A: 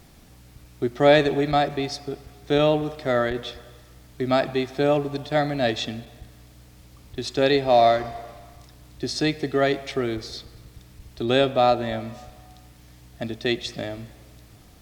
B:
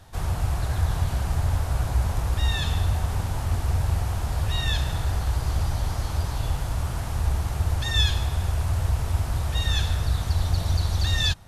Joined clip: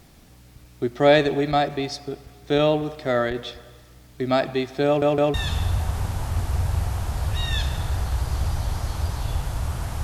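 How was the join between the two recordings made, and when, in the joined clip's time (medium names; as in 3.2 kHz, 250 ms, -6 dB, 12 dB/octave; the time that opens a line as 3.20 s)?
A
4.86 s: stutter in place 0.16 s, 3 plays
5.34 s: go over to B from 2.49 s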